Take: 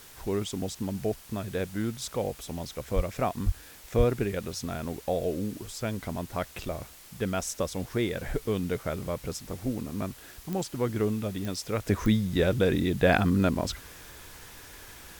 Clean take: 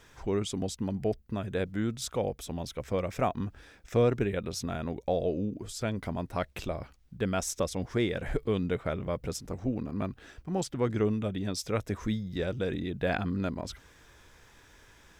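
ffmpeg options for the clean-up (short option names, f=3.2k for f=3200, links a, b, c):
-filter_complex "[0:a]adeclick=t=4,asplit=3[a][b][c];[a]afade=t=out:st=2.95:d=0.02[d];[b]highpass=f=140:w=0.5412,highpass=f=140:w=1.3066,afade=t=in:st=2.95:d=0.02,afade=t=out:st=3.07:d=0.02[e];[c]afade=t=in:st=3.07:d=0.02[f];[d][e][f]amix=inputs=3:normalize=0,asplit=3[g][h][i];[g]afade=t=out:st=3.45:d=0.02[j];[h]highpass=f=140:w=0.5412,highpass=f=140:w=1.3066,afade=t=in:st=3.45:d=0.02,afade=t=out:st=3.57:d=0.02[k];[i]afade=t=in:st=3.57:d=0.02[l];[j][k][l]amix=inputs=3:normalize=0,asplit=3[m][n][o];[m]afade=t=out:st=3.97:d=0.02[p];[n]highpass=f=140:w=0.5412,highpass=f=140:w=1.3066,afade=t=in:st=3.97:d=0.02,afade=t=out:st=4.09:d=0.02[q];[o]afade=t=in:st=4.09:d=0.02[r];[p][q][r]amix=inputs=3:normalize=0,afwtdn=0.0032,asetnsamples=n=441:p=0,asendcmd='11.86 volume volume -7.5dB',volume=0dB"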